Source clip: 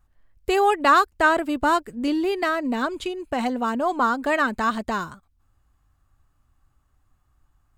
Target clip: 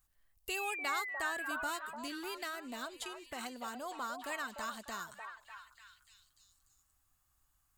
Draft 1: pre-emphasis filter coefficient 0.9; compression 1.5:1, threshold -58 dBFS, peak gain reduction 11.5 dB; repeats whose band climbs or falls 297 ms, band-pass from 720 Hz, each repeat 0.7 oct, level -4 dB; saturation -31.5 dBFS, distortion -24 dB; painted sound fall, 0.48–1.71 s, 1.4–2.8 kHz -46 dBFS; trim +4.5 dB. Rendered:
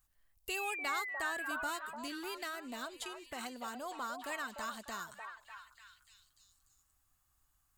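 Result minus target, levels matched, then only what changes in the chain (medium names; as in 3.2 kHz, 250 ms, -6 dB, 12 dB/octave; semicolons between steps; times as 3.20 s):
saturation: distortion +11 dB
change: saturation -25 dBFS, distortion -35 dB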